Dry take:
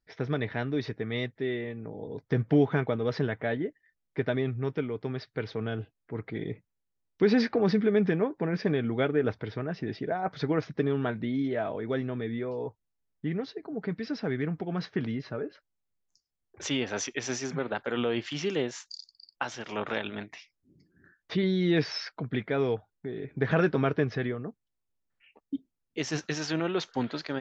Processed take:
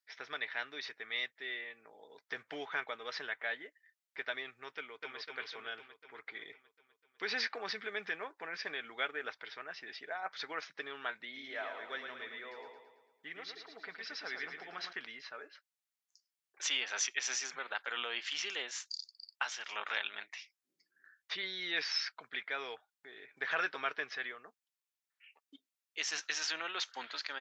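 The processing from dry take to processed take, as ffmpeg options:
-filter_complex "[0:a]asplit=2[s0][s1];[s1]afade=t=in:st=4.77:d=0.01,afade=t=out:st=5.18:d=0.01,aecho=0:1:250|500|750|1000|1250|1500|1750|2000|2250|2500|2750:0.794328|0.516313|0.335604|0.218142|0.141793|0.0921652|0.0599074|0.0389398|0.0253109|0.0164521|0.0106938[s2];[s0][s2]amix=inputs=2:normalize=0,asettb=1/sr,asplit=3[s3][s4][s5];[s3]atrim=end=11.254[s6];[s4]atrim=start=11.25:end=14.93,asetpts=PTS-STARTPTS,afade=t=in:d=0.004:c=qsin,afade=t=out:st=3.676:d=0.004:c=qsin,aecho=1:1:111|222|333|444|555|666|777:0.501|0.266|0.141|0.0746|0.0395|0.021|0.0111,atrim=end_sample=162288[s7];[s5]atrim=start=14.926[s8];[s6][s7]acrossfade=d=0.004:c1=hsin:c2=qsin[s9];[s9][s8]acrossfade=d=0.004:c1=qsin:c2=hsin,highpass=1400,volume=1.12"

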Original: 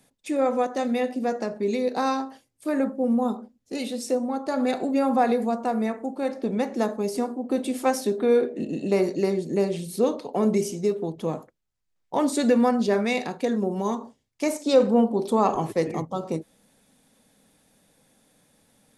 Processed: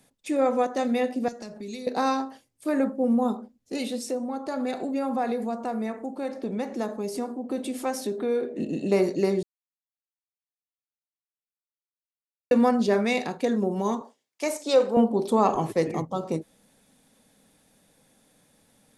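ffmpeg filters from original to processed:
-filter_complex "[0:a]asettb=1/sr,asplit=3[s0][s1][s2];[s0]atrim=end=1.284[s3];[s1]atrim=start=1.28:end=1.87,asetpts=PTS-STARTPTS,afade=t=in:d=0.004:c=qsin,afade=t=out:st=0.586:d=0.004:c=qsin,acrossover=split=160|3000[s4][s5][s6];[s5]acompressor=threshold=0.0112:ratio=6:attack=3.2:release=140:knee=2.83:detection=peak[s7];[s4][s7][s6]amix=inputs=3:normalize=0[s8];[s2]atrim=start=1.866[s9];[s3][s8]acrossfade=d=0.004:c1=hsin:c2=qsin[s10];[s10][s9]acrossfade=d=0.004:c1=qsin:c2=hsin,asettb=1/sr,asplit=3[s11][s12][s13];[s11]atrim=end=3.984[s14];[s12]atrim=start=3.98:end=8.58,asetpts=PTS-STARTPTS,afade=t=in:d=0.004:c=qsin,afade=t=out:st=4.596:d=0.004:c=qsin,acompressor=threshold=0.0224:ratio=1.5:attack=3.2:release=140:knee=1:detection=peak[s15];[s13]atrim=start=8.576[s16];[s14][s15]acrossfade=d=0.004:c1=hsin:c2=qsin[s17];[s17][s16]acrossfade=d=0.004:c1=qsin:c2=hsin,asettb=1/sr,asplit=3[s18][s19][s20];[s18]atrim=end=14.014[s21];[s19]atrim=start=14.01:end=14.97,asetpts=PTS-STARTPTS,afade=t=in:d=0.004:c=qsin,afade=t=out:st=0.956:d=0.004:c=qsin,highpass=420[s22];[s20]atrim=start=14.966[s23];[s21][s22]acrossfade=d=0.004:c1=hsin:c2=qsin[s24];[s24][s23]acrossfade=d=0.004:c1=qsin:c2=hsin,asplit=3[s25][s26][s27];[s25]atrim=end=9.43,asetpts=PTS-STARTPTS,afade=t=out:st=9.426:d=0.004:c=hsin[s28];[s26]atrim=start=9.43:end=12.51,asetpts=PTS-STARTPTS,volume=0[s29];[s27]atrim=start=12.51,asetpts=PTS-STARTPTS,afade=t=in:d=0.004:c=hsin[s30];[s28][s29][s30]concat=n=3:v=0:a=1"

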